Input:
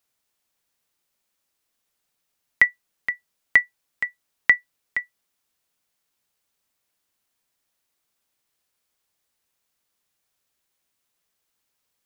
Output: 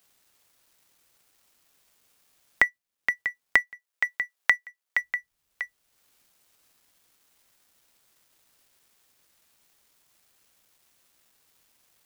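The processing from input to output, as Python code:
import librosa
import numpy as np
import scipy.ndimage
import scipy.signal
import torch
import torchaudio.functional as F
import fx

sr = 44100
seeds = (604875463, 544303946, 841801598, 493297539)

y = fx.law_mismatch(x, sr, coded='A')
y = fx.highpass(y, sr, hz=440.0, slope=12, at=(3.57, 5.01))
y = y + 10.0 ** (-17.0 / 20.0) * np.pad(y, (int(643 * sr / 1000.0), 0))[:len(y)]
y = fx.band_squash(y, sr, depth_pct=70)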